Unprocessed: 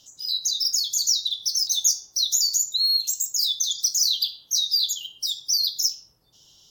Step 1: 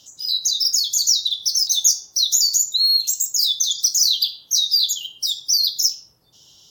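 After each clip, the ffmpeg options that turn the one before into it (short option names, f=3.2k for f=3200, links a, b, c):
-af "highpass=61,volume=4.5dB"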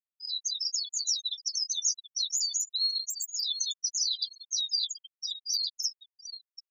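-filter_complex "[0:a]asplit=2[a][b];[b]adelay=730,lowpass=f=4.9k:p=1,volume=-7.5dB,asplit=2[c][d];[d]adelay=730,lowpass=f=4.9k:p=1,volume=0.52,asplit=2[e][f];[f]adelay=730,lowpass=f=4.9k:p=1,volume=0.52,asplit=2[g][h];[h]adelay=730,lowpass=f=4.9k:p=1,volume=0.52,asplit=2[i][j];[j]adelay=730,lowpass=f=4.9k:p=1,volume=0.52,asplit=2[k][l];[l]adelay=730,lowpass=f=4.9k:p=1,volume=0.52[m];[a][c][e][g][i][k][m]amix=inputs=7:normalize=0,flanger=delay=7.5:depth=3.1:regen=-44:speed=0.51:shape=sinusoidal,afftfilt=real='re*gte(hypot(re,im),0.178)':imag='im*gte(hypot(re,im),0.178)':win_size=1024:overlap=0.75,volume=-7.5dB"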